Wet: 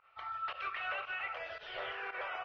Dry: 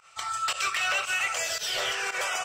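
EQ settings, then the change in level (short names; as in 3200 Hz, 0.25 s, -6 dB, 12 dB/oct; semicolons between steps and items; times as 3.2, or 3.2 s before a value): Gaussian blur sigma 3.4 samples; bell 180 Hz -8.5 dB 1.2 oct; -7.0 dB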